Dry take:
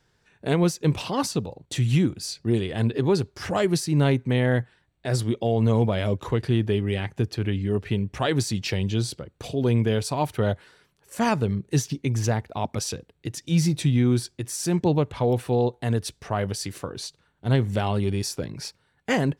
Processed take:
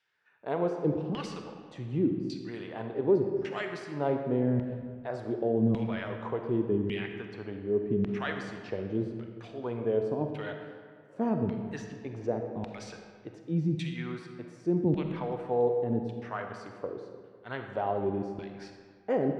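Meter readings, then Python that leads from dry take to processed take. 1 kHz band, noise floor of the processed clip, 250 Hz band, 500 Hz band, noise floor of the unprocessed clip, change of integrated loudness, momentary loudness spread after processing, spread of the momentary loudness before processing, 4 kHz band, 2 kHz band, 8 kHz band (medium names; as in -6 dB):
-7.0 dB, -54 dBFS, -6.0 dB, -4.0 dB, -68 dBFS, -7.0 dB, 15 LU, 11 LU, -15.5 dB, -8.5 dB, under -25 dB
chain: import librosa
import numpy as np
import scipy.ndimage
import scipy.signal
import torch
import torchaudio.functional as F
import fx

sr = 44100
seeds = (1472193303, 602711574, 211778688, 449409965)

y = fx.peak_eq(x, sr, hz=2900.0, db=-3.0, octaves=2.5)
y = fx.filter_lfo_bandpass(y, sr, shape='saw_down', hz=0.87, low_hz=200.0, high_hz=2800.0, q=1.7)
y = fx.air_absorb(y, sr, metres=53.0)
y = fx.rev_freeverb(y, sr, rt60_s=1.9, hf_ratio=0.65, predelay_ms=5, drr_db=4.5)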